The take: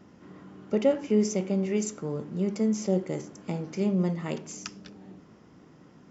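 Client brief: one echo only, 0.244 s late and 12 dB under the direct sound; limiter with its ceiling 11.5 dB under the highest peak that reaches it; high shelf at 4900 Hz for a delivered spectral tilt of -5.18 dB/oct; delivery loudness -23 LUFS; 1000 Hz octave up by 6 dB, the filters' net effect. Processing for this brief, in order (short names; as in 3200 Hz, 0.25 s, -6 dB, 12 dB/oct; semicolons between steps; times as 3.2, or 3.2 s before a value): bell 1000 Hz +7.5 dB; high shelf 4900 Hz +8 dB; limiter -21.5 dBFS; echo 0.244 s -12 dB; gain +9 dB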